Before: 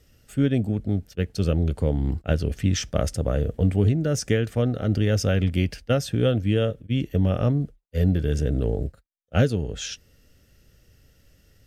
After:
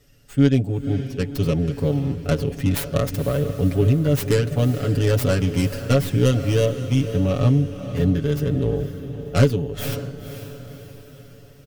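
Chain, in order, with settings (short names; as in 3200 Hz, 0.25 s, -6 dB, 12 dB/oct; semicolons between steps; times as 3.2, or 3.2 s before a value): tracing distortion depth 0.45 ms; comb 7.1 ms, depth 90%; diffused feedback echo 0.515 s, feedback 49%, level -11 dB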